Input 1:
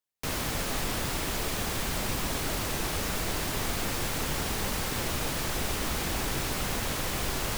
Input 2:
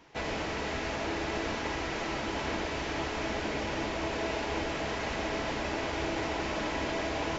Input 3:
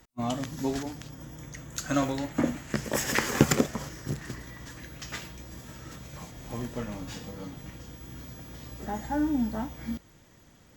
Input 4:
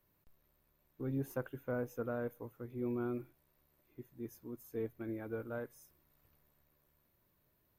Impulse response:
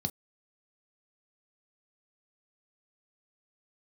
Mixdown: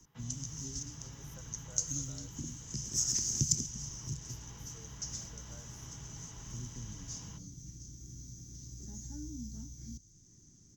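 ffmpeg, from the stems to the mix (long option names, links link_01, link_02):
-filter_complex "[1:a]volume=-15.5dB,asplit=2[link_01][link_02];[link_02]volume=-5.5dB[link_03];[2:a]firequalizer=gain_entry='entry(350,0);entry(510,-19);entry(3100,-15);entry(6100,14);entry(9000,-13)':delay=0.05:min_phase=1,volume=-4dB,asplit=2[link_04][link_05];[link_05]volume=-21.5dB[link_06];[3:a]highpass=frequency=500:width=0.5412,highpass=frequency=500:width=1.3066,volume=-7dB[link_07];[4:a]atrim=start_sample=2205[link_08];[link_03][link_06]amix=inputs=2:normalize=0[link_09];[link_09][link_08]afir=irnorm=-1:irlink=0[link_10];[link_01][link_04][link_07][link_10]amix=inputs=4:normalize=0,acrossover=split=130|3000[link_11][link_12][link_13];[link_12]acompressor=threshold=-60dB:ratio=2[link_14];[link_11][link_14][link_13]amix=inputs=3:normalize=0"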